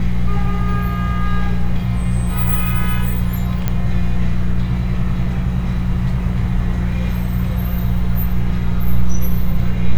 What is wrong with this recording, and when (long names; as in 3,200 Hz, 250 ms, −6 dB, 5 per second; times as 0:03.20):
mains hum 60 Hz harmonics 3 −19 dBFS
0:03.68: click −6 dBFS